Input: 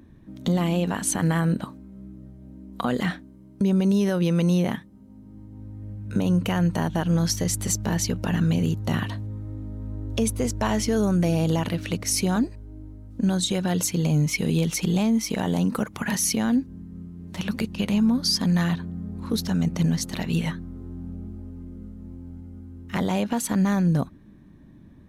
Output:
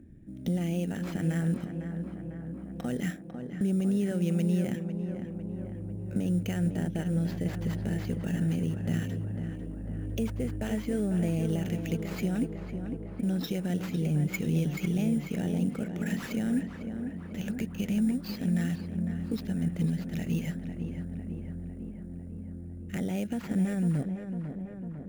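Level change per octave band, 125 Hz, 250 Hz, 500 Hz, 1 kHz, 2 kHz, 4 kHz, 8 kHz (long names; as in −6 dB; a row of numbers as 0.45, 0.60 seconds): −5.0, −5.5, −7.5, −14.5, −9.0, −15.5, −18.5 decibels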